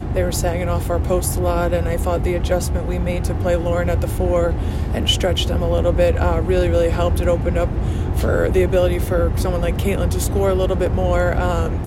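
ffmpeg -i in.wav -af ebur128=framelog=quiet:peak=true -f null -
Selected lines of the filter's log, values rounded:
Integrated loudness:
  I:         -19.1 LUFS
  Threshold: -29.1 LUFS
Loudness range:
  LRA:         2.0 LU
  Threshold: -39.0 LUFS
  LRA low:   -20.2 LUFS
  LRA high:  -18.2 LUFS
True peak:
  Peak:       -3.6 dBFS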